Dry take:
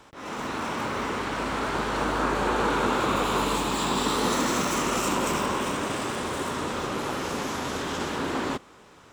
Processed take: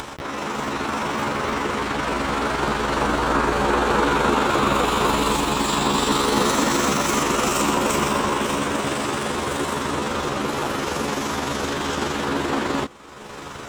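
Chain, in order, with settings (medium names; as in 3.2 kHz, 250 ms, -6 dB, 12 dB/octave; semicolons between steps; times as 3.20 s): upward compressor, threshold -28 dBFS; granular stretch 1.5×, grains 85 ms; trim +6.5 dB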